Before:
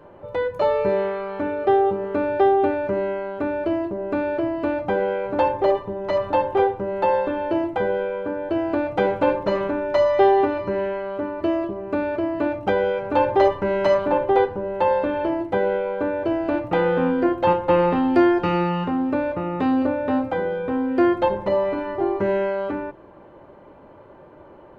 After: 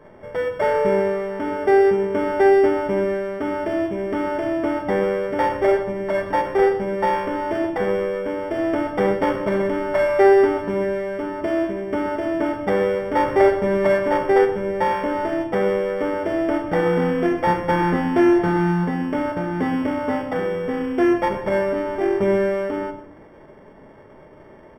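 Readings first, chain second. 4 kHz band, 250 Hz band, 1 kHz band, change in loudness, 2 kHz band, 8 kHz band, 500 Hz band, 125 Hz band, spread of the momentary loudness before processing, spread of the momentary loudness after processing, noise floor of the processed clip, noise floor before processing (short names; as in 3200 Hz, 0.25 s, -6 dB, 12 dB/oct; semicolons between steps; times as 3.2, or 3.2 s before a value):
0.0 dB, +1.0 dB, 0.0 dB, +1.0 dB, +3.0 dB, n/a, +1.5 dB, +3.5 dB, 7 LU, 8 LU, -45 dBFS, -46 dBFS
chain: sample sorter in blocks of 16 samples; polynomial smoothing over 41 samples; echo 0.127 s -15.5 dB; shoebox room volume 960 m³, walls furnished, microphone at 1.5 m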